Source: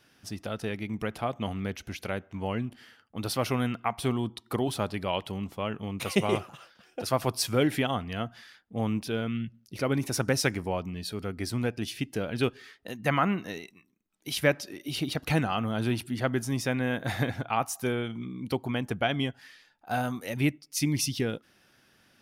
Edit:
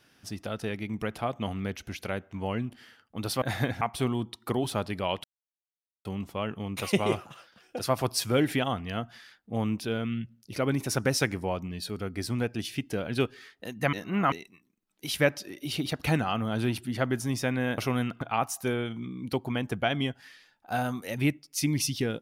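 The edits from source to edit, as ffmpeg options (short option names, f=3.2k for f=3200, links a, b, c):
-filter_complex "[0:a]asplit=8[a][b][c][d][e][f][g][h];[a]atrim=end=3.422[i];[b]atrim=start=17.008:end=17.402[j];[c]atrim=start=3.848:end=5.28,asetpts=PTS-STARTPTS,afade=t=out:st=1.428:d=0.004:c=hsin,apad=pad_dur=0.81[k];[d]atrim=start=5.28:end=13.162,asetpts=PTS-STARTPTS,afade=t=in:d=0.004:c=hsin[l];[e]atrim=start=13.158:end=13.552,asetpts=PTS-STARTPTS,areverse[m];[f]atrim=start=13.548:end=17.012[n];[g]atrim=start=3.418:end=3.852[o];[h]atrim=start=17.398[p];[i][j]acrossfade=d=0.004:c1=hsin:c2=hsin[q];[k][l]concat=n=2:v=0:a=1[r];[q][r]acrossfade=d=0.004:c1=hsin:c2=hsin[s];[s][m]acrossfade=d=0.004:c1=hsin:c2=hsin[t];[t][n]acrossfade=d=0.004:c1=hsin:c2=hsin[u];[u][o]acrossfade=d=0.004:c1=hsin:c2=hsin[v];[v][p]acrossfade=d=0.004:c1=hsin:c2=hsin"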